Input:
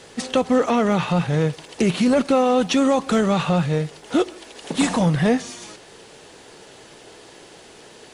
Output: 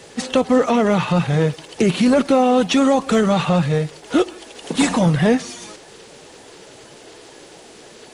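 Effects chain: coarse spectral quantiser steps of 15 dB; trim +3 dB

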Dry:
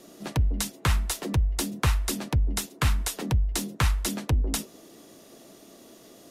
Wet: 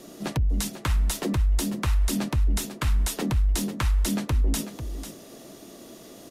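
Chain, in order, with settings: bass shelf 170 Hz +5 dB; peak limiter -22 dBFS, peak gain reduction 11 dB; on a send: delay 495 ms -10.5 dB; on the sum: trim +4 dB

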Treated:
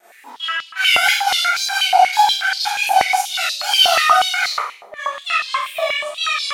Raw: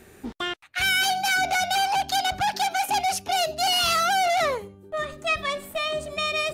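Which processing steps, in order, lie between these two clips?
wow and flutter 130 cents; Schroeder reverb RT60 0.63 s, combs from 25 ms, DRR -10 dB; step-sequenced high-pass 8.3 Hz 720–4400 Hz; trim -6.5 dB

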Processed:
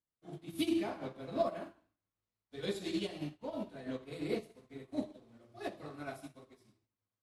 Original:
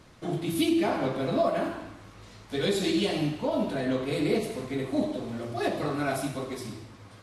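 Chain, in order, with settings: upward expansion 2.5:1, over -48 dBFS; trim -5 dB

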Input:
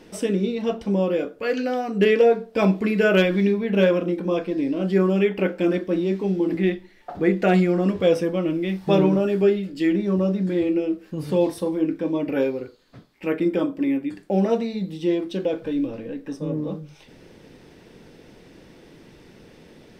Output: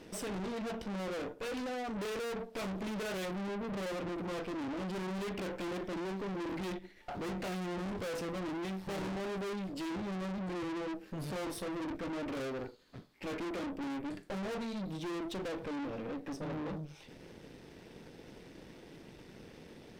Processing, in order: time-frequency box 3.26–3.89 s, 680–8100 Hz -10 dB; valve stage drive 37 dB, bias 0.8

